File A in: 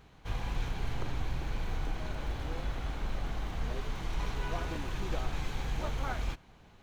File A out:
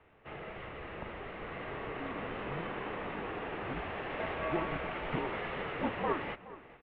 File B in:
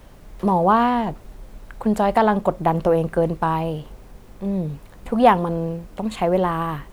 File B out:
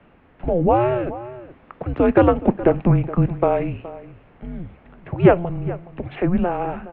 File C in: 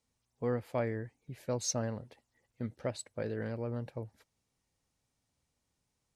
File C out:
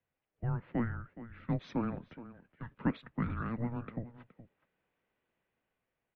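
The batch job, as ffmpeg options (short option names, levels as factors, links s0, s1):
-filter_complex "[0:a]lowshelf=f=140:g=11,highpass=f=360:t=q:w=0.5412,highpass=f=360:t=q:w=1.307,lowpass=f=3100:t=q:w=0.5176,lowpass=f=3100:t=q:w=0.7071,lowpass=f=3100:t=q:w=1.932,afreqshift=-350,asplit=2[s0][s1];[s1]adelay=419.8,volume=0.158,highshelf=f=4000:g=-9.45[s2];[s0][s2]amix=inputs=2:normalize=0,acrossover=split=160[s3][s4];[s4]dynaudnorm=f=600:g=5:m=2.24[s5];[s3][s5]amix=inputs=2:normalize=0"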